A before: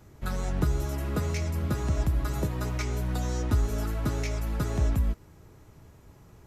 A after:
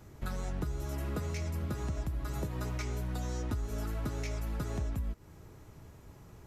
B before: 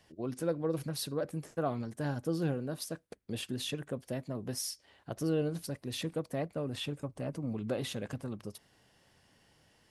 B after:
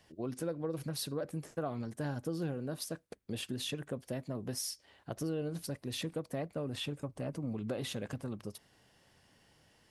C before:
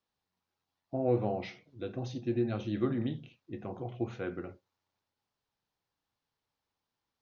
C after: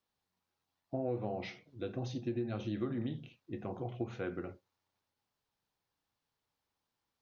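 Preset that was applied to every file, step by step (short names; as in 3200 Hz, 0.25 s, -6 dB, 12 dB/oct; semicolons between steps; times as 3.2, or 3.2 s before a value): compressor 4:1, threshold -33 dBFS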